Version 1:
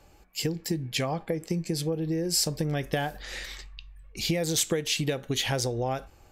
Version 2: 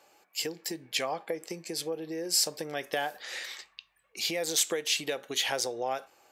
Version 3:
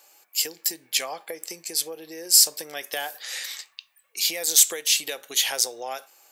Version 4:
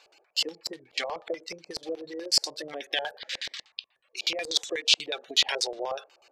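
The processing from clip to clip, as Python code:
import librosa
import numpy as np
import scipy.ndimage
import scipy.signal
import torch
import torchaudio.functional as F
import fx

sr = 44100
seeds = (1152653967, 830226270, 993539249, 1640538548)

y1 = scipy.signal.sosfilt(scipy.signal.butter(2, 480.0, 'highpass', fs=sr, output='sos'), x)
y2 = fx.riaa(y1, sr, side='recording')
y3 = fx.spec_quant(y2, sr, step_db=30)
y3 = fx.filter_lfo_lowpass(y3, sr, shape='square', hz=8.2, low_hz=580.0, high_hz=3800.0, q=1.8)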